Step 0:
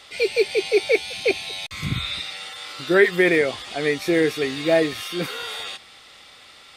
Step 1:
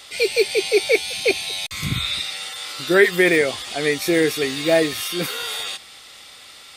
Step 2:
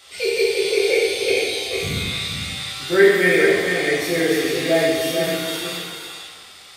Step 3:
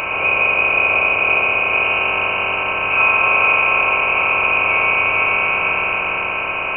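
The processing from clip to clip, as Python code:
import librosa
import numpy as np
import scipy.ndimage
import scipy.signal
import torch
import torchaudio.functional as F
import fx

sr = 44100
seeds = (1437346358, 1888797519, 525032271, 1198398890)

y1 = fx.high_shelf(x, sr, hz=5700.0, db=12.0)
y1 = y1 * 10.0 ** (1.0 / 20.0)
y2 = y1 + 10.0 ** (-6.0 / 20.0) * np.pad(y1, (int(447 * sr / 1000.0), 0))[:len(y1)]
y2 = fx.rev_plate(y2, sr, seeds[0], rt60_s=1.5, hf_ratio=0.8, predelay_ms=0, drr_db=-6.0)
y2 = y2 * 10.0 ** (-7.5 / 20.0)
y3 = fx.bin_compress(y2, sr, power=0.2)
y3 = fx.freq_invert(y3, sr, carrier_hz=2900)
y3 = y3 * 10.0 ** (-5.5 / 20.0)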